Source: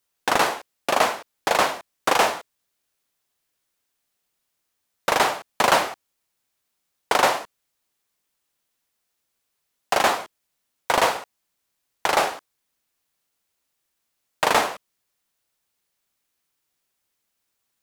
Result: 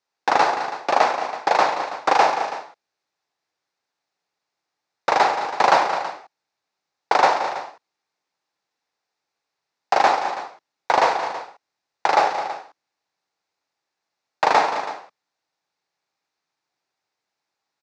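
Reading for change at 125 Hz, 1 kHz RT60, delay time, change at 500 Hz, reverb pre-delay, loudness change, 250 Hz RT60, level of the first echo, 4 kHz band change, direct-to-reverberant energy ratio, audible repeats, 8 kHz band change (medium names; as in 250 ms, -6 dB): no reading, no reverb, 72 ms, +1.5 dB, no reverb, +2.0 dB, no reverb, -14.5 dB, -3.0 dB, no reverb, 4, -7.5 dB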